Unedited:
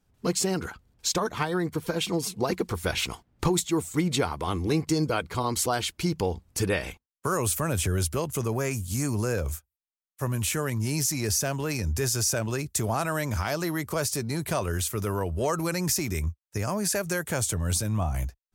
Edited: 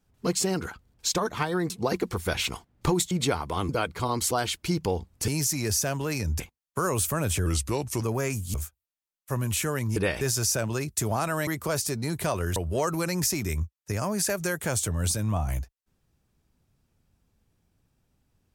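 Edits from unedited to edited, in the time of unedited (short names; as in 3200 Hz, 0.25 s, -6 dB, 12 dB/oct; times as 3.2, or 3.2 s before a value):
1.7–2.28 cut
3.69–4.02 cut
4.6–5.04 cut
6.63–6.88 swap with 10.87–11.99
7.94–8.42 speed 87%
8.95–9.45 cut
13.25–13.74 cut
14.83–15.22 cut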